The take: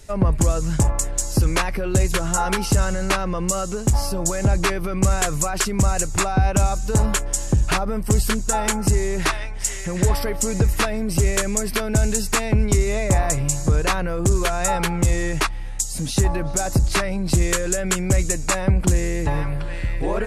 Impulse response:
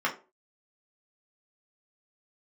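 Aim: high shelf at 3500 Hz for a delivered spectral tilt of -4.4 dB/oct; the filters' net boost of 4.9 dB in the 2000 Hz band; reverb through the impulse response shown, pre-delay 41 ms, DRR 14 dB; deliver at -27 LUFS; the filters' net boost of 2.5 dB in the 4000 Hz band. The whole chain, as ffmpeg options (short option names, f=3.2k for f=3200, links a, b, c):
-filter_complex "[0:a]equalizer=f=2k:t=o:g=6.5,highshelf=f=3.5k:g=-6,equalizer=f=4k:t=o:g=5.5,asplit=2[a][b];[1:a]atrim=start_sample=2205,adelay=41[c];[b][c]afir=irnorm=-1:irlink=0,volume=-25dB[d];[a][d]amix=inputs=2:normalize=0,volume=-6dB"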